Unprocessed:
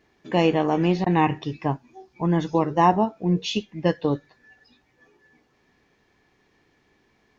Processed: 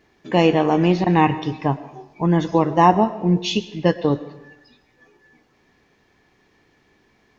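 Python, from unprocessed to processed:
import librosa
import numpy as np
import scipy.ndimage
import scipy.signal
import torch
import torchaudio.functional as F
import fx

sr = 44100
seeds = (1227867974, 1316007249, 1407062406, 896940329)

y = fx.rev_freeverb(x, sr, rt60_s=1.0, hf_ratio=0.85, predelay_ms=70, drr_db=15.0)
y = F.gain(torch.from_numpy(y), 4.0).numpy()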